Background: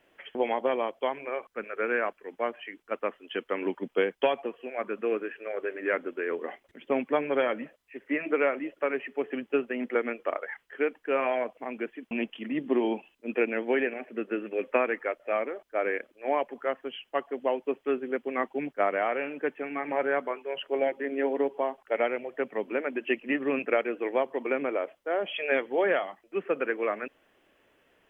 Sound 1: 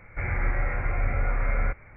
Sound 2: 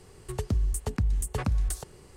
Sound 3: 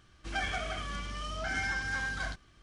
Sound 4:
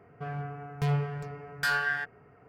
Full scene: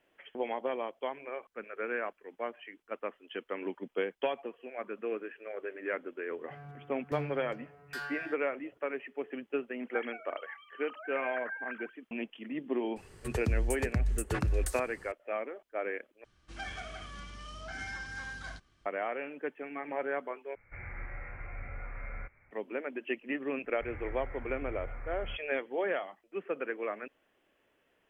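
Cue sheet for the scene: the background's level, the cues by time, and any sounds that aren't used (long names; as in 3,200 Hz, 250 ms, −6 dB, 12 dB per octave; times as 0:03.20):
background −7 dB
0:06.30: mix in 4 −12.5 dB
0:09.59: mix in 3 −9 dB + three sine waves on the formant tracks
0:12.96: mix in 2 −3.5 dB + parametric band 1,700 Hz +7 dB 0.72 octaves
0:16.24: overwrite with 3 −7.5 dB
0:20.55: overwrite with 1 −17 dB + high-shelf EQ 2,200 Hz +9.5 dB
0:23.64: mix in 1 −16.5 dB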